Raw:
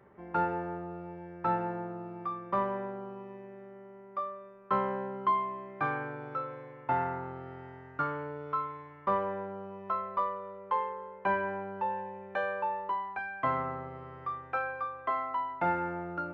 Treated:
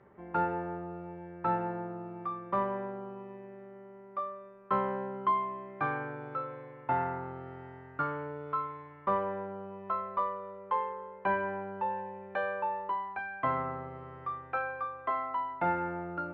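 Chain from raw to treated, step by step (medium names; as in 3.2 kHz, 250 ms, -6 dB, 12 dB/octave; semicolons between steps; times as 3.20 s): distance through air 110 m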